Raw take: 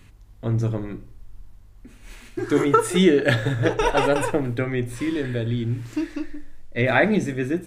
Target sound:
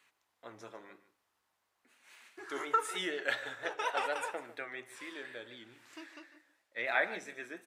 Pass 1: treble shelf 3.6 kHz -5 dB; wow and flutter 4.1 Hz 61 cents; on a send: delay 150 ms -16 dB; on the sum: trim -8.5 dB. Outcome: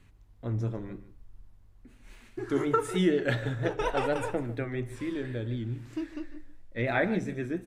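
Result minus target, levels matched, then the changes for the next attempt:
1 kHz band -3.5 dB
add first: high-pass 840 Hz 12 dB/octave

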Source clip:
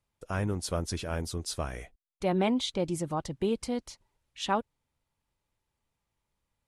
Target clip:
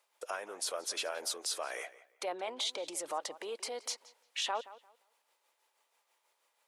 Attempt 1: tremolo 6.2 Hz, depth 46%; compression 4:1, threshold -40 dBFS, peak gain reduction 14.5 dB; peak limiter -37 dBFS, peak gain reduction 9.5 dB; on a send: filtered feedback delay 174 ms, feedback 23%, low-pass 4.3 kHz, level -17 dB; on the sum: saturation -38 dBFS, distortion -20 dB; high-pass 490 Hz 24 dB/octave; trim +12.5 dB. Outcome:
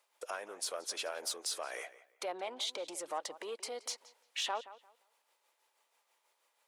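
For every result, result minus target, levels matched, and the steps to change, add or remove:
compression: peak gain reduction +14.5 dB; saturation: distortion +12 dB
remove: compression 4:1, threshold -40 dBFS, peak gain reduction 14.5 dB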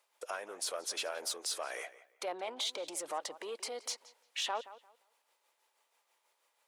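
saturation: distortion +12 dB
change: saturation -31 dBFS, distortion -32 dB

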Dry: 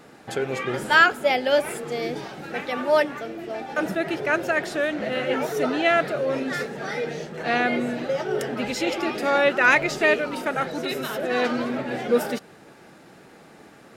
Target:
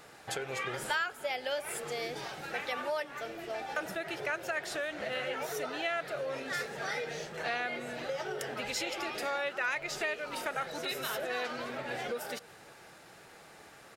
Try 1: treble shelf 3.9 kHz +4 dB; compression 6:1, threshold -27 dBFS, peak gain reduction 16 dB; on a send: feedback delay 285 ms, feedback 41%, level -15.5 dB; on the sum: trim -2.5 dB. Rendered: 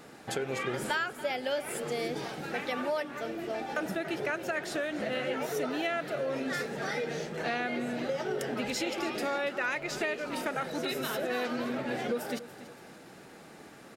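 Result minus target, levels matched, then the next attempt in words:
250 Hz band +8.0 dB; echo-to-direct +10.5 dB
treble shelf 3.9 kHz +4 dB; compression 6:1, threshold -27 dBFS, peak gain reduction 16 dB; peaking EQ 240 Hz -12 dB 1.5 oct; on a send: feedback delay 285 ms, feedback 41%, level -26 dB; on the sum: trim -2.5 dB

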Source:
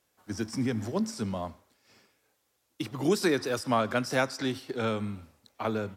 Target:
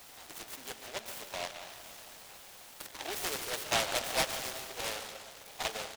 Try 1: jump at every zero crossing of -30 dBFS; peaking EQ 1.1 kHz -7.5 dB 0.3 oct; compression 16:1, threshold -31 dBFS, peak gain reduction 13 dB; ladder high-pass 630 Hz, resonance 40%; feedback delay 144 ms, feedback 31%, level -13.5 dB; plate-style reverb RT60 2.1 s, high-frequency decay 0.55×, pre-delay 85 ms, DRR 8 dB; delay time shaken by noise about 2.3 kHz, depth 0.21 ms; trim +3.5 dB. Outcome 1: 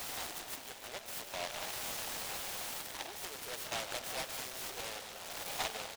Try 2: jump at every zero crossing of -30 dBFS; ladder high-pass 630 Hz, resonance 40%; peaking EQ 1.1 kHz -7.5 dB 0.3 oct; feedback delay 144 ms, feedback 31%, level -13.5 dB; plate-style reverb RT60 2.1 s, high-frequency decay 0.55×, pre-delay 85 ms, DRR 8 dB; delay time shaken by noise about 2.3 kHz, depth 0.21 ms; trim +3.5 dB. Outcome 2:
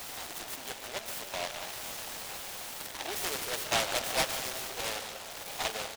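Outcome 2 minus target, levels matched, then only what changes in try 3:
jump at every zero crossing: distortion +9 dB
change: jump at every zero crossing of -41 dBFS

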